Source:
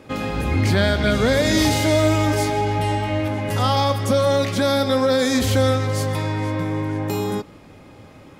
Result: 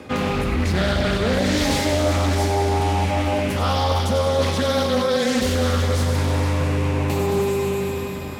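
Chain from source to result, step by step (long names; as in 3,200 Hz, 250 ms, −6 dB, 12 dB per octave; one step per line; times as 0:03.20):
high-pass filter 55 Hz 12 dB per octave
on a send: delay with a high-pass on its return 96 ms, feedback 73%, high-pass 2,600 Hz, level −7.5 dB
on the sum: four-comb reverb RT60 3.8 s, combs from 30 ms, DRR 3.5 dB
frequency shifter −17 Hz
reversed playback
downward compressor 4 to 1, threshold −27 dBFS, peak gain reduction 13.5 dB
reversed playback
highs frequency-modulated by the lows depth 0.37 ms
level +8 dB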